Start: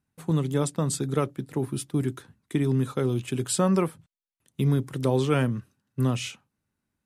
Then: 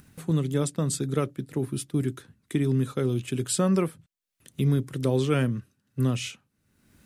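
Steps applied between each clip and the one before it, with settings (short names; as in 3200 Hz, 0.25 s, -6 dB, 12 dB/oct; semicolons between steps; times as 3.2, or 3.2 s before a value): bell 890 Hz -7 dB 0.79 oct; upward compressor, threshold -36 dBFS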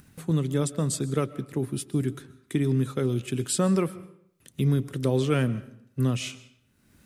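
digital reverb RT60 0.7 s, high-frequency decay 0.8×, pre-delay 90 ms, DRR 17.5 dB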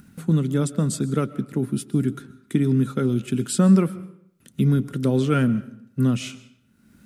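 small resonant body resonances 210/1400 Hz, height 11 dB, ringing for 35 ms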